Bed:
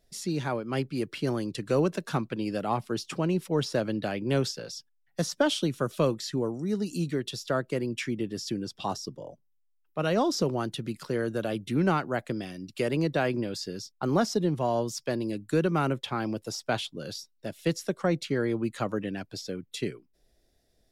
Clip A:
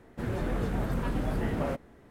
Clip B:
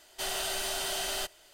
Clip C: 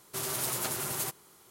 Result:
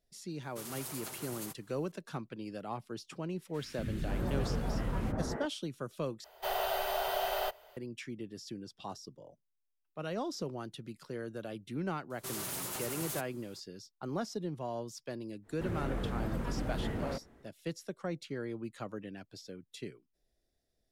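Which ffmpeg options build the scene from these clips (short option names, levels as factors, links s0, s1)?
-filter_complex "[3:a]asplit=2[s0][s1];[1:a]asplit=2[s2][s3];[0:a]volume=0.266[s4];[s2]acrossover=split=310|1900[s5][s6][s7];[s5]adelay=240[s8];[s6]adelay=540[s9];[s8][s9][s7]amix=inputs=3:normalize=0[s10];[2:a]firequalizer=gain_entry='entry(120,0);entry(260,-18);entry(440,9);entry(810,10);entry(1600,1);entry(4800,-8);entry(8100,-16);entry(15000,8)':delay=0.05:min_phase=1[s11];[s1]aeval=exprs='0.0398*(abs(mod(val(0)/0.0398+3,4)-2)-1)':c=same[s12];[s4]asplit=2[s13][s14];[s13]atrim=end=6.244[s15];[s11]atrim=end=1.53,asetpts=PTS-STARTPTS,volume=0.708[s16];[s14]atrim=start=7.766[s17];[s0]atrim=end=1.5,asetpts=PTS-STARTPTS,volume=0.282,afade=t=in:d=0.004:c=hsin,afade=t=out:st=1.496:d=0.004:c=hsin,adelay=420[s18];[s10]atrim=end=2.1,asetpts=PTS-STARTPTS,volume=0.708,afade=t=in:d=0.004:c=hsin,afade=t=out:st=2.096:d=0.004:c=hsin,adelay=3360[s19];[s12]atrim=end=1.5,asetpts=PTS-STARTPTS,volume=0.562,afade=t=in:d=0.004:c=hsin,afade=t=out:st=1.496:d=0.004:c=hsin,adelay=12100[s20];[s3]atrim=end=2.1,asetpts=PTS-STARTPTS,volume=0.531,afade=t=in:d=0.1,afade=t=out:st=2:d=0.1,adelay=15420[s21];[s15][s16]acrossfade=d=0.004:c1=hsin:c2=hsin[s22];[s22][s17]acrossfade=d=0.004:c1=hsin:c2=hsin[s23];[s23][s18][s19][s20][s21]amix=inputs=5:normalize=0"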